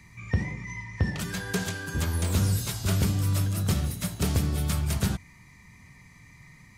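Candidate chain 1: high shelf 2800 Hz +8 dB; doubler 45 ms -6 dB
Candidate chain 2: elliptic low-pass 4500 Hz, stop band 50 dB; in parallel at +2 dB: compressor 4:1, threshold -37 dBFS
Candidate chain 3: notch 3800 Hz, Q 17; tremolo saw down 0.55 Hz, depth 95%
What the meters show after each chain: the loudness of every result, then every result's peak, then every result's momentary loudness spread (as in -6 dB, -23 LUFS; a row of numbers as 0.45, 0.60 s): -26.0, -27.0, -33.0 LUFS; -10.0, -13.0, -15.0 dBFS; 5, 21, 14 LU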